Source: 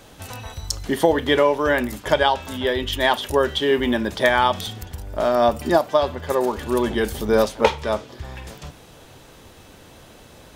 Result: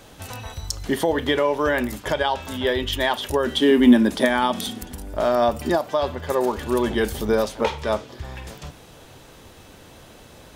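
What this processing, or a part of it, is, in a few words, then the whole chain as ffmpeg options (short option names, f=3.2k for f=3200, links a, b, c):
clipper into limiter: -filter_complex "[0:a]asoftclip=type=hard:threshold=-3dB,alimiter=limit=-10dB:level=0:latency=1:release=114,asettb=1/sr,asplit=3[a][b][c];[a]atrim=end=3.464[d];[b]atrim=start=3.46:end=5.13,asetpts=PTS-STARTPTS,afade=t=in:d=0.004:c=qsin,afade=t=out:st=1.666:d=0.004:c=qsin,equalizer=f=100:t=o:w=0.67:g=-12,equalizer=f=250:t=o:w=0.67:g=12,equalizer=f=10k:t=o:w=0.67:g=7[e];[c]atrim=start=5.126[f];[d][e]acrossfade=d=0.004:c1=hsin:c2=qsin[g];[g][f]acrossfade=d=0.004:c1=qsin:c2=hsin"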